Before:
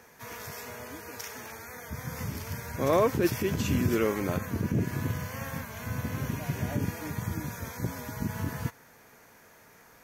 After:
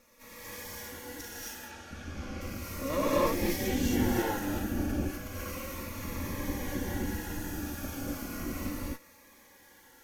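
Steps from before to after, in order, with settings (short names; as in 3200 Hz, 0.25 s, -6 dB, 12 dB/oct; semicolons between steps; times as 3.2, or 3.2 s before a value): minimum comb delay 3.6 ms; 1.43–2.4 LPF 6600 Hz -> 3600 Hz 12 dB/oct; 3.04–3.9 bell 1000 Hz -9.5 dB 0.27 oct; 4.85–5.28 negative-ratio compressor -39 dBFS, ratio -0.5; non-linear reverb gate 0.29 s rising, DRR -7 dB; cascading phaser falling 0.34 Hz; gain -6 dB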